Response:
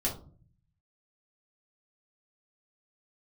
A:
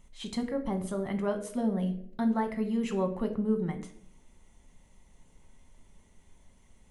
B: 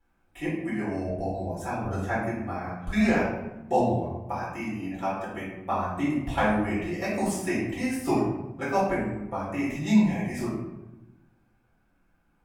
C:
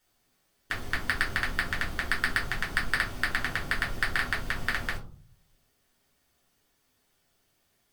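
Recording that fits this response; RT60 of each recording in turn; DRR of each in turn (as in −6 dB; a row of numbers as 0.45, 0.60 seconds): C; 0.60, 1.0, 0.45 seconds; 5.5, −11.0, −5.5 decibels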